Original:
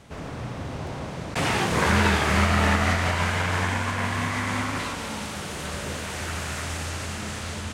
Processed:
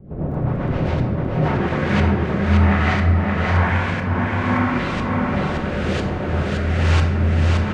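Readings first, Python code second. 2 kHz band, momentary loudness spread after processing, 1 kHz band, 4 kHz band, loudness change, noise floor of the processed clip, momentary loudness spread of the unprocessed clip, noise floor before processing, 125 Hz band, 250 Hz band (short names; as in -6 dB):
+1.5 dB, 6 LU, +2.5 dB, -2.5 dB, +6.0 dB, -24 dBFS, 13 LU, -35 dBFS, +10.0 dB, +8.5 dB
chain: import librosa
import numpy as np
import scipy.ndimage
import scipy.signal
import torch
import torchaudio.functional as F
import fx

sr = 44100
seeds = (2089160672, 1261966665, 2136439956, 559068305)

p1 = fx.rider(x, sr, range_db=5, speed_s=0.5)
p2 = fx.filter_lfo_lowpass(p1, sr, shape='saw_up', hz=1.0, low_hz=340.0, high_hz=4300.0, q=0.76)
p3 = fx.dmg_crackle(p2, sr, seeds[0], per_s=15.0, level_db=-47.0)
p4 = fx.rotary_switch(p3, sr, hz=7.5, then_hz=1.2, switch_at_s=1.14)
p5 = p4 + fx.echo_single(p4, sr, ms=571, db=-3.5, dry=0)
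p6 = fx.room_shoebox(p5, sr, seeds[1], volume_m3=650.0, walls='mixed', distance_m=1.0)
y = p6 * librosa.db_to_amplitude(6.0)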